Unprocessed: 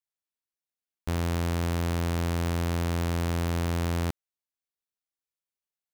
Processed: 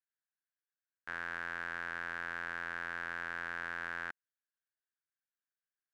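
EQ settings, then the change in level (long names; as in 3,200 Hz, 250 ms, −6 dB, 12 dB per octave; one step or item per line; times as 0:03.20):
resonant band-pass 1,600 Hz, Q 7.6
+8.5 dB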